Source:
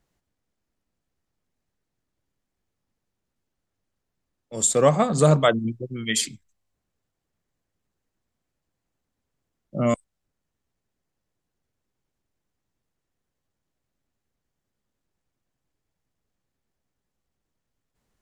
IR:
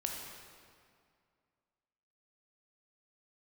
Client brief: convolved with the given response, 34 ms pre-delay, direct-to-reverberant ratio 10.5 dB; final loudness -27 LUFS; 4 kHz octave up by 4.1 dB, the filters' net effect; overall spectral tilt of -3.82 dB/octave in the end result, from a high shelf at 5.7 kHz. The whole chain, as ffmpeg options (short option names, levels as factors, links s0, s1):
-filter_complex "[0:a]equalizer=f=4000:t=o:g=3.5,highshelf=f=5700:g=5,asplit=2[s0][s1];[1:a]atrim=start_sample=2205,adelay=34[s2];[s1][s2]afir=irnorm=-1:irlink=0,volume=0.237[s3];[s0][s3]amix=inputs=2:normalize=0,volume=0.447"